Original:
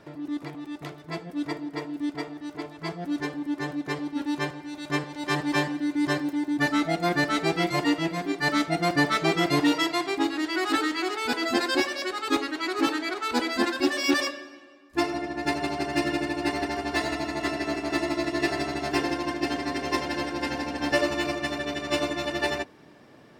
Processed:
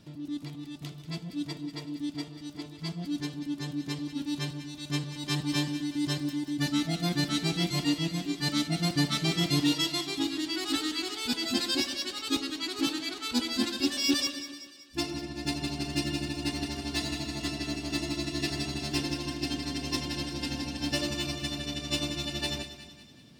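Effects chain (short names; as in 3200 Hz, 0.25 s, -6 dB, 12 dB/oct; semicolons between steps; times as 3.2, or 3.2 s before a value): band shelf 870 Hz -14.5 dB 3 oct; split-band echo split 1200 Hz, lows 0.133 s, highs 0.188 s, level -12 dB; gain +2 dB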